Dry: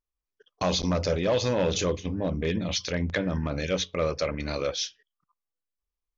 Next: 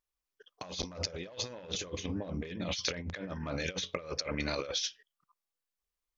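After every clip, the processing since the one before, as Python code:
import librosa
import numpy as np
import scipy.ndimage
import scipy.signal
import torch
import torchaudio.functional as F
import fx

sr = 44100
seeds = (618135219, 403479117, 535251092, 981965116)

y = fx.low_shelf(x, sr, hz=140.0, db=-3.5)
y = fx.over_compress(y, sr, threshold_db=-32.0, ratio=-0.5)
y = fx.low_shelf(y, sr, hz=480.0, db=-5.0)
y = y * librosa.db_to_amplitude(-2.0)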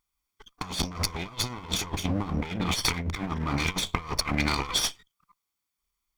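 y = fx.lower_of_two(x, sr, delay_ms=0.88)
y = y * librosa.db_to_amplitude(9.0)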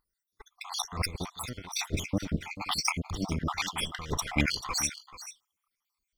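y = fx.spec_dropout(x, sr, seeds[0], share_pct=65)
y = y + 10.0 ** (-14.5 / 20.0) * np.pad(y, (int(437 * sr / 1000.0), 0))[:len(y)]
y = y * librosa.db_to_amplitude(2.0)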